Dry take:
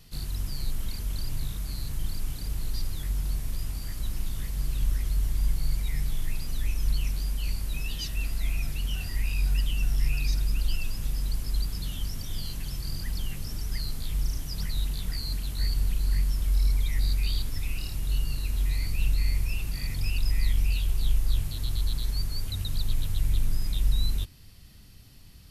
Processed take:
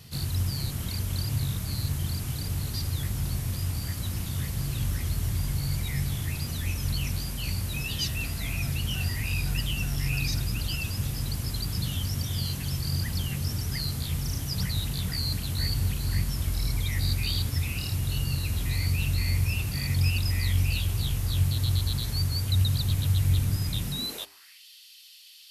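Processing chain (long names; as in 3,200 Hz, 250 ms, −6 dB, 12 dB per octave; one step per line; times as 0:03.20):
high-pass filter sweep 95 Hz → 3,200 Hz, 0:23.76–0:24.64
mains-hum notches 50/100/150/200/250/300/350/400 Hz
level +5.5 dB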